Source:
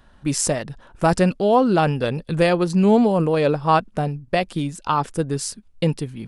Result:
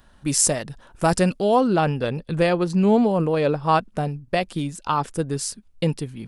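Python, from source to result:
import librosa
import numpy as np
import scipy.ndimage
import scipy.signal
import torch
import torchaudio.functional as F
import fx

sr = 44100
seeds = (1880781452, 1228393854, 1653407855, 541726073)

y = fx.high_shelf(x, sr, hz=5700.0, db=fx.steps((0.0, 9.5), (1.66, -4.0), (3.63, 3.0)))
y = y * librosa.db_to_amplitude(-2.0)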